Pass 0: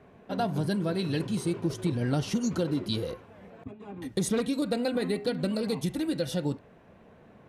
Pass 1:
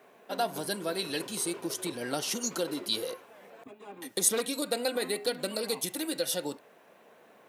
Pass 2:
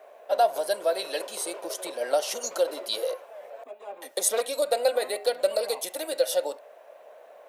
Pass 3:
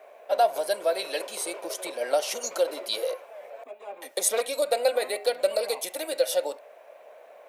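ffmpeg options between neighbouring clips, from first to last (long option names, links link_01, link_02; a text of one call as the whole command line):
ffmpeg -i in.wav -af "highpass=420,aemphasis=mode=production:type=50fm,volume=1dB" out.wav
ffmpeg -i in.wav -af "highpass=frequency=590:width_type=q:width=5.4" out.wav
ffmpeg -i in.wav -af "equalizer=frequency=2300:width_type=o:width=0.3:gain=6" out.wav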